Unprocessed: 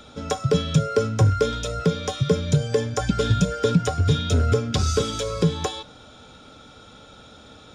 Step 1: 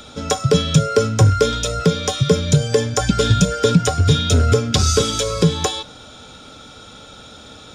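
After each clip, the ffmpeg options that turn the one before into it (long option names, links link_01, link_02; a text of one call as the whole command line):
ffmpeg -i in.wav -af "highshelf=frequency=3600:gain=7,volume=5dB" out.wav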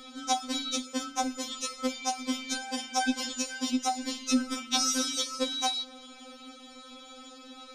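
ffmpeg -i in.wav -af "afftfilt=real='re*3.46*eq(mod(b,12),0)':imag='im*3.46*eq(mod(b,12),0)':win_size=2048:overlap=0.75,volume=-5.5dB" out.wav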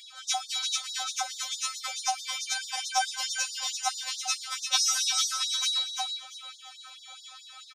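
ffmpeg -i in.wav -filter_complex "[0:a]asplit=2[link_01][link_02];[link_02]aecho=0:1:344|688|1032:0.501|0.135|0.0365[link_03];[link_01][link_03]amix=inputs=2:normalize=0,afftfilt=real='re*gte(b*sr/1024,530*pow(3600/530,0.5+0.5*sin(2*PI*4.6*pts/sr)))':imag='im*gte(b*sr/1024,530*pow(3600/530,0.5+0.5*sin(2*PI*4.6*pts/sr)))':win_size=1024:overlap=0.75,volume=3dB" out.wav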